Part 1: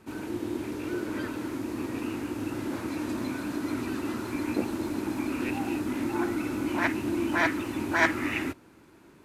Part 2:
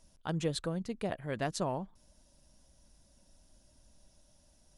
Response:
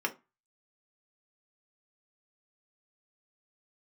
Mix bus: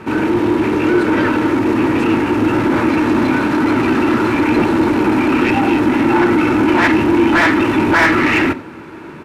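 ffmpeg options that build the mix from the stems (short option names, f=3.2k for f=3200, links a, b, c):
-filter_complex "[0:a]bass=f=250:g=13,treble=f=4k:g=-4,asplit=2[a][b];[b]highpass=f=720:p=1,volume=27dB,asoftclip=type=tanh:threshold=-8.5dB[c];[a][c]amix=inputs=2:normalize=0,lowpass=f=1.9k:p=1,volume=-6dB,volume=2.5dB,asplit=3[d][e][f];[e]volume=-11dB[g];[f]volume=-17dB[h];[1:a]adelay=450,volume=-4.5dB[i];[2:a]atrim=start_sample=2205[j];[g][j]afir=irnorm=-1:irlink=0[k];[h]aecho=0:1:93:1[l];[d][i][k][l]amix=inputs=4:normalize=0"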